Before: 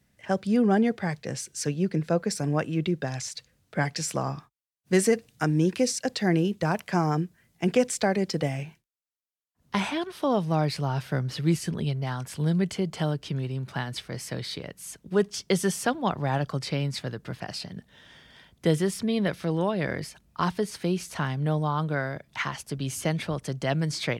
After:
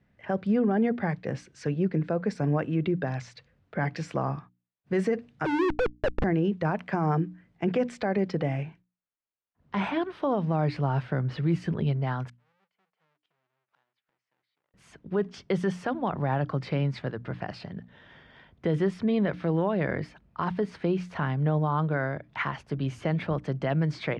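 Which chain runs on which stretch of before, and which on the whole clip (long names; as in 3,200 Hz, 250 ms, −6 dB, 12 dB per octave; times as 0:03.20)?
0:05.45–0:06.24: three sine waves on the formant tracks + comparator with hysteresis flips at −30.5 dBFS
0:12.28–0:14.74: each half-wave held at its own peak + high-pass filter 1,500 Hz 6 dB per octave + gate with flip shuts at −28 dBFS, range −41 dB
whole clip: low-pass filter 2,100 Hz 12 dB per octave; mains-hum notches 60/120/180/240/300 Hz; brickwall limiter −19 dBFS; level +2 dB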